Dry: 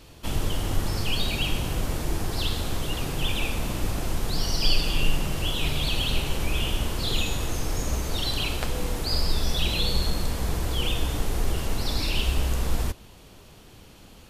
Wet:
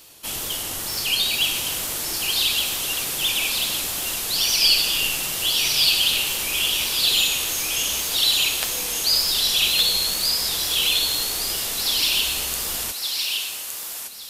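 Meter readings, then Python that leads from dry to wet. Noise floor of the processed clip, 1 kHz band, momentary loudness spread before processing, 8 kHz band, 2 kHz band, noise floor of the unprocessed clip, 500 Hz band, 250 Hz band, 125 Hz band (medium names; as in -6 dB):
-32 dBFS, 0.0 dB, 5 LU, +13.5 dB, +7.5 dB, -49 dBFS, -3.5 dB, -8.0 dB, -14.5 dB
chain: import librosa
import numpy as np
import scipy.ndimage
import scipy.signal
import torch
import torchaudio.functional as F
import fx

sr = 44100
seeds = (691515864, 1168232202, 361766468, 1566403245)

y = fx.wow_flutter(x, sr, seeds[0], rate_hz=2.1, depth_cents=39.0)
y = fx.riaa(y, sr, side='recording')
y = fx.echo_thinned(y, sr, ms=1164, feedback_pct=39, hz=1000.0, wet_db=-3)
y = fx.dynamic_eq(y, sr, hz=3400.0, q=0.75, threshold_db=-33.0, ratio=4.0, max_db=5)
y = y * librosa.db_to_amplitude(-1.5)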